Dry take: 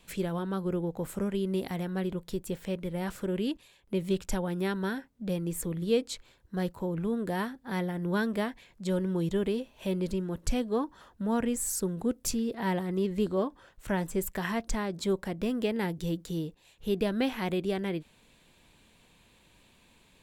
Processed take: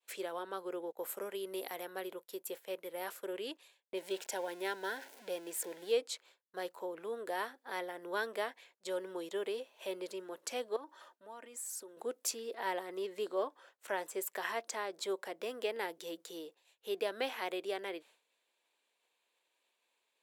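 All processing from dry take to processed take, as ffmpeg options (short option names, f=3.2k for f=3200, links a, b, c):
-filter_complex "[0:a]asettb=1/sr,asplit=3[a][b][c];[a]atrim=end=0.924[d];[b]atrim=start=0.92:end=3.33,asetpts=PTS-STARTPTS,afade=t=in:d=0.004:c=qsin,afade=t=out:st=2.406:d=0.004:c=qsin,equalizer=f=12k:t=o:w=0.29:g=12,agate=range=-33dB:threshold=-40dB:ratio=3:release=100:detection=peak[e];[c]atrim=start=3.326[f];[d][e]acrossfade=d=0.004:c1=hsin:c2=qsin[g];[g][f]acrossfade=d=0.004:c1=qsin:c2=hsin,asettb=1/sr,asplit=3[h][i][j];[h]atrim=end=3.974[k];[i]atrim=start=3.97:end=5.92,asetpts=PTS-STARTPTS,afade=t=in:d=0.004:c=qsin,afade=t=out:st=1.946:d=0.004:c=qsin,aeval=exprs='val(0)+0.5*0.00841*sgn(val(0))':c=same,asuperstop=centerf=1200:order=8:qfactor=4.5,equalizer=f=68:t=o:w=1.2:g=-9[l];[j]atrim=start=5.916[m];[k][l]acrossfade=d=0.004:c1=hsin:c2=qsin[n];[n][m]acrossfade=d=0.004:c1=qsin:c2=hsin,asettb=1/sr,asplit=3[o][p][q];[o]atrim=end=10.764[r];[p]atrim=start=10.76:end=11.97,asetpts=PTS-STARTPTS,afade=t=in:d=0.004:c=qsin,afade=t=out:st=1.206:d=0.004:c=qsin,acompressor=threshold=-37dB:ratio=8:attack=3.2:release=140:knee=1:detection=peak,aecho=1:1:3.3:0.45,atrim=end_sample=53361[s];[q]atrim=start=11.966[t];[r][s]acrossfade=d=0.004:c1=hsin:c2=qsin[u];[u][t]acrossfade=d=0.004:c1=qsin:c2=hsin,highpass=f=420:w=0.5412,highpass=f=420:w=1.3066,agate=range=-33dB:threshold=-54dB:ratio=3:detection=peak,volume=-3dB"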